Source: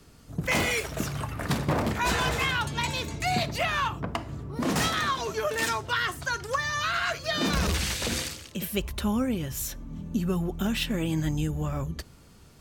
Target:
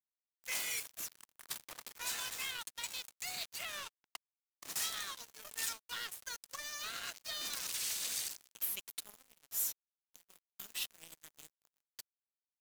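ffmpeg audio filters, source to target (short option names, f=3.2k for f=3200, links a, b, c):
-af "aderivative,acrusher=bits=5:mix=0:aa=0.5,volume=-4dB"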